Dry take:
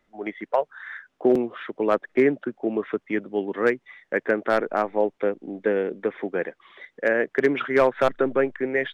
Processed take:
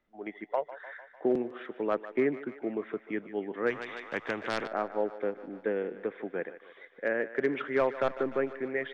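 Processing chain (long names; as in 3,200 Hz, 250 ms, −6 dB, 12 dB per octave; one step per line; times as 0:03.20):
high-frequency loss of the air 87 metres
feedback echo with a high-pass in the loop 150 ms, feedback 71%, high-pass 420 Hz, level −13.5 dB
0:03.70–0:04.68: every bin compressed towards the loudest bin 2 to 1
level −8 dB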